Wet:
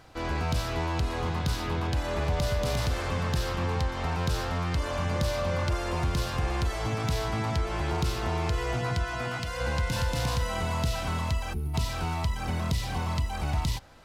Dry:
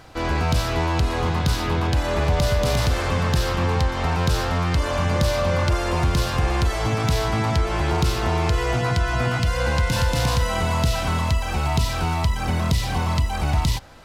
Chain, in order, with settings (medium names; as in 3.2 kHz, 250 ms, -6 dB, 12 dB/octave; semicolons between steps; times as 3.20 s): 9.04–9.61 s: bass shelf 190 Hz -8.5 dB; 11.54–11.74 s: time-frequency box 480–9000 Hz -22 dB; trim -7.5 dB